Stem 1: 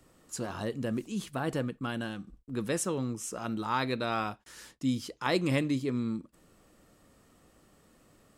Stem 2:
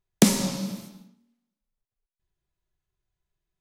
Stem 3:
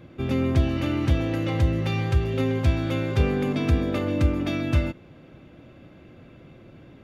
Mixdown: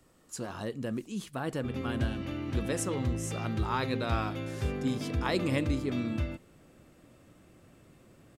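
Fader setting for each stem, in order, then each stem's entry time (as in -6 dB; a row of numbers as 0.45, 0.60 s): -2.0 dB, off, -11.0 dB; 0.00 s, off, 1.45 s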